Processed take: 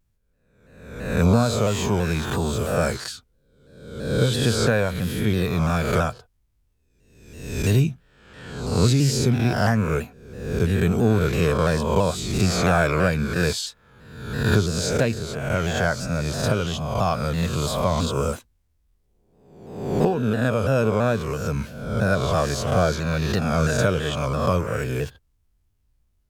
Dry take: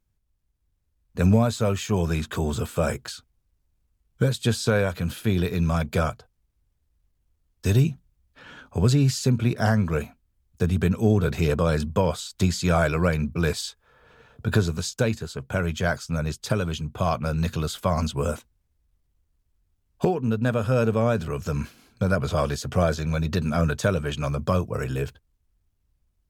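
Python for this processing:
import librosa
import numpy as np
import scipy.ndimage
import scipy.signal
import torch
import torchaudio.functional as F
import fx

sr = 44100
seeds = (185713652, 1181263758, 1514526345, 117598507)

y = fx.spec_swells(x, sr, rise_s=0.94)
y = fx.vibrato_shape(y, sr, shape='saw_down', rate_hz=3.0, depth_cents=100.0)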